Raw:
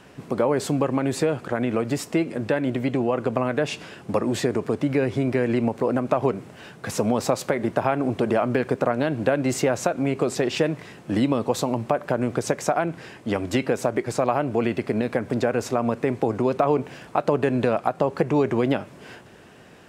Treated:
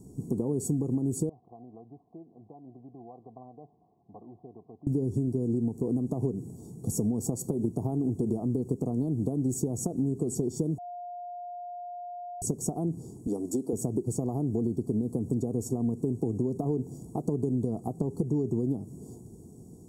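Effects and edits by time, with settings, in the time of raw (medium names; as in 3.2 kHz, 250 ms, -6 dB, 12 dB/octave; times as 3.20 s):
1.29–4.87 s: cascade formant filter a
10.78–12.42 s: bleep 708 Hz -23.5 dBFS
13.27–13.73 s: high-pass 330 Hz
whole clip: Chebyshev band-stop 540–7300 Hz, order 3; comb 0.9 ms, depth 92%; compression 5:1, threshold -25 dBFS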